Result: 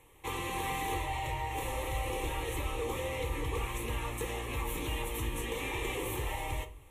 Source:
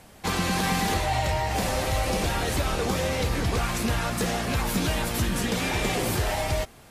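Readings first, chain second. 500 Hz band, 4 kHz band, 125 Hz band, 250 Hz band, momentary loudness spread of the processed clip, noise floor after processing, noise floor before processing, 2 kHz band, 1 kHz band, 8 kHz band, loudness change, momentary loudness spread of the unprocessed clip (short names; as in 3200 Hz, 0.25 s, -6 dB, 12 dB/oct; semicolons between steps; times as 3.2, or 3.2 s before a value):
-9.0 dB, -11.5 dB, -10.5 dB, -13.5 dB, 2 LU, -53 dBFS, -50 dBFS, -9.0 dB, -8.5 dB, -11.0 dB, -9.5 dB, 2 LU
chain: fixed phaser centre 1000 Hz, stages 8; shoebox room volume 310 m³, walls furnished, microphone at 0.67 m; gain -7 dB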